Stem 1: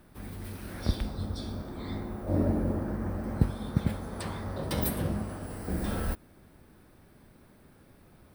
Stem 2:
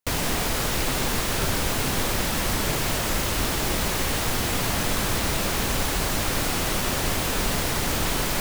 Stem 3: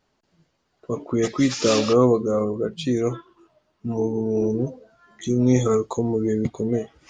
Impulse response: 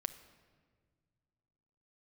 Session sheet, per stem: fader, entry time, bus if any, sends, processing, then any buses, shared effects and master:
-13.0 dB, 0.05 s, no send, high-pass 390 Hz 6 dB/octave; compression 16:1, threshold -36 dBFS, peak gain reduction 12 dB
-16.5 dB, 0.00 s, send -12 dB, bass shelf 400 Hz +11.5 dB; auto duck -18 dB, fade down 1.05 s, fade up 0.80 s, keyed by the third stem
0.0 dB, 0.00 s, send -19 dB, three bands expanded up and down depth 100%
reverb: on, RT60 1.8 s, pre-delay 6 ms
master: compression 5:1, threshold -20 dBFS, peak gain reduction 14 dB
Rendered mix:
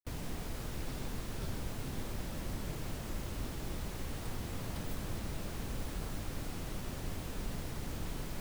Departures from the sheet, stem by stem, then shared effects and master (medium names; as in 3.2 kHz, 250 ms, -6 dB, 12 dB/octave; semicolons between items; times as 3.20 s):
stem 2 -16.5 dB -> -24.0 dB; stem 3: muted